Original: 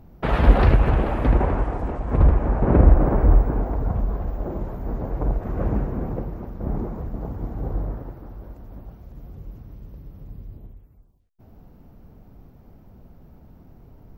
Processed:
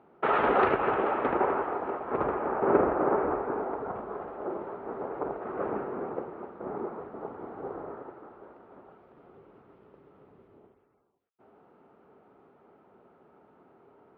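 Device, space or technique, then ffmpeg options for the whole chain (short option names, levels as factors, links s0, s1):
phone earpiece: -af "highpass=380,equalizer=f=400:t=q:w=4:g=8,equalizer=f=860:t=q:w=4:g=4,equalizer=f=1300:t=q:w=4:g=9,lowpass=f=3100:w=0.5412,lowpass=f=3100:w=1.3066,volume=0.708"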